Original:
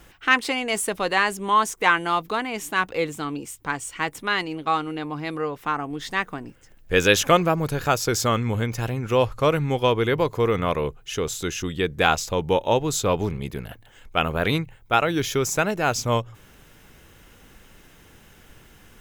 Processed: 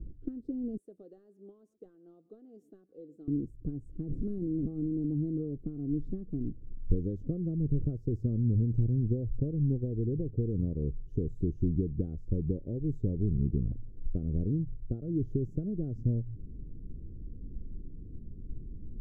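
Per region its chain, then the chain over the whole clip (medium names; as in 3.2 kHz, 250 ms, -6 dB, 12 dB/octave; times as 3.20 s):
0.77–3.28 s: high-pass 840 Hz + delay 117 ms -23 dB
4.06–5.06 s: one-bit delta coder 64 kbps, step -32 dBFS + de-esser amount 80% + transient shaper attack -3 dB, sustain +7 dB
whole clip: compression 6:1, threshold -29 dBFS; inverse Chebyshev low-pass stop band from 880 Hz, stop band 50 dB; bass shelf 70 Hz +12 dB; trim +4 dB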